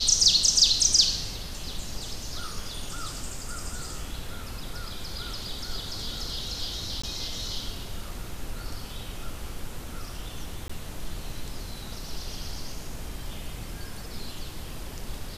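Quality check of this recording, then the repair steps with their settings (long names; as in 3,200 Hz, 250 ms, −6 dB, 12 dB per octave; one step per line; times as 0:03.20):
0:07.02–0:07.04: drop-out 15 ms
0:10.68–0:10.70: drop-out 15 ms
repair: repair the gap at 0:07.02, 15 ms
repair the gap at 0:10.68, 15 ms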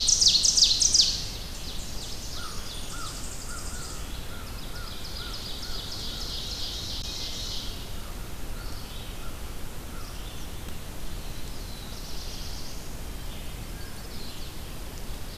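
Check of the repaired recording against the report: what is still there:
none of them is left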